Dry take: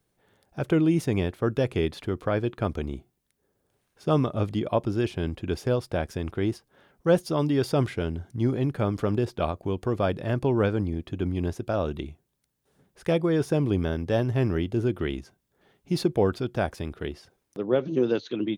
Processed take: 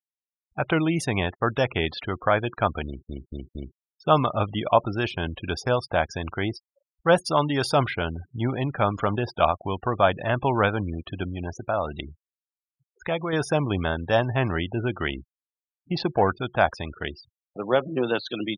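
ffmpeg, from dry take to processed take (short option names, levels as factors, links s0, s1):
-filter_complex "[0:a]asettb=1/sr,asplit=3[s0][s1][s2];[s0]atrim=end=11.234[s3];[s1]atrim=start=11.23:end=13.33,asetpts=PTS-STARTPTS,afade=t=in:d=0.004:c=qsin,afade=t=out:st=2.096:d=0.004:c=qsin,acompressor=threshold=0.0398:ratio=2:attack=3.2:release=140:knee=1:detection=peak[s4];[s2]atrim=start=13.326[s5];[s3][s4]acrossfade=d=0.004:c1=hsin:c2=qsin[s6];[s6][s5]acrossfade=d=0.004:c1=qsin:c2=hsin,asettb=1/sr,asplit=3[s7][s8][s9];[s7]atrim=end=15.084[s10];[s8]atrim=start=15.08:end=16.41,asetpts=PTS-STARTPTS,afade=t=in:d=0.004:c=qsin,afade=t=out:st=1.326:d=0.004:c=qsin,adynamicsmooth=sensitivity=5:basefreq=1600[s11];[s9]atrim=start=16.406[s12];[s10][s11]acrossfade=d=0.004:c1=hsin:c2=qsin[s13];[s13][s12]acrossfade=d=0.004:c1=qsin:c2=hsin,asplit=5[s14][s15][s16][s17][s18];[s14]atrim=end=3.092[s19];[s15]atrim=start=2.858:end=3.092[s20];[s16]atrim=start=2.858:end=3.092[s21];[s17]atrim=start=2.858:end=3.092[s22];[s18]atrim=start=3.778[s23];[s19][s20]acrossfade=d=0.004:c1=hsin:c2=hsin[s24];[s24][s21]acrossfade=d=0.004:c1=hsin:c2=hsin[s25];[s25][s22]acrossfade=d=0.004:c1=hsin:c2=hsin[s26];[s26][s23]acrossfade=d=0.004:c1=hsin:c2=hsin,afftfilt=real='re*gte(hypot(re,im),0.00891)':imag='im*gte(hypot(re,im),0.00891)':win_size=1024:overlap=0.75,lowshelf=f=570:t=q:w=1.5:g=-9,volume=2.66"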